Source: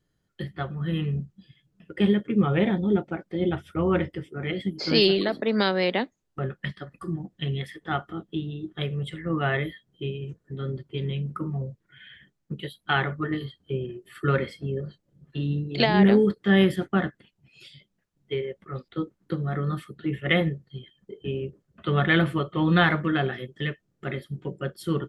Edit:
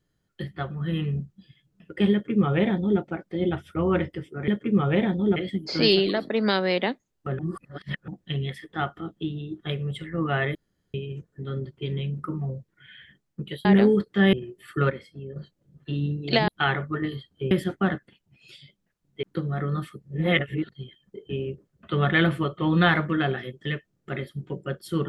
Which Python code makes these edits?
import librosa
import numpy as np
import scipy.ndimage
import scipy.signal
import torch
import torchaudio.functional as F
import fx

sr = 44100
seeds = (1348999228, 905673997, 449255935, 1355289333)

y = fx.edit(x, sr, fx.duplicate(start_s=2.12, length_s=0.88, to_s=4.48),
    fx.reverse_span(start_s=6.51, length_s=0.69),
    fx.room_tone_fill(start_s=9.67, length_s=0.39),
    fx.swap(start_s=12.77, length_s=1.03, other_s=15.95, other_length_s=0.68),
    fx.clip_gain(start_s=14.37, length_s=0.46, db=-8.5),
    fx.cut(start_s=18.35, length_s=0.83),
    fx.reverse_span(start_s=19.97, length_s=0.69), tone=tone)